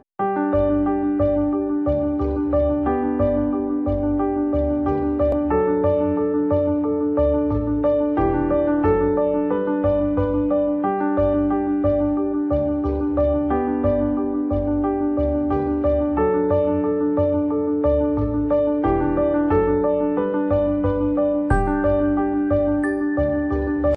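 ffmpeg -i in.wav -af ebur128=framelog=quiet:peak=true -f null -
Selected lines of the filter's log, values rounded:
Integrated loudness:
  I:         -20.4 LUFS
  Threshold: -30.4 LUFS
Loudness range:
  LRA:         1.2 LU
  Threshold: -40.3 LUFS
  LRA low:   -21.1 LUFS
  LRA high:  -19.8 LUFS
True peak:
  Peak:       -6.0 dBFS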